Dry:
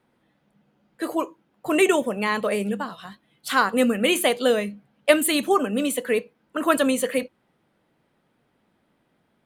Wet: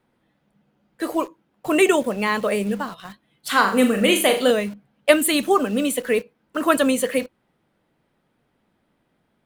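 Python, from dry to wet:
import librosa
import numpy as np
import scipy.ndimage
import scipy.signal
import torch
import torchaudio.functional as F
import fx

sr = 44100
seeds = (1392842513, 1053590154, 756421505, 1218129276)

p1 = fx.room_flutter(x, sr, wall_m=6.8, rt60_s=0.38, at=(3.48, 4.51))
p2 = fx.quant_dither(p1, sr, seeds[0], bits=6, dither='none')
p3 = p1 + (p2 * 10.0 ** (-8.0 / 20.0))
p4 = fx.low_shelf(p3, sr, hz=60.0, db=7.5)
y = p4 * 10.0 ** (-1.0 / 20.0)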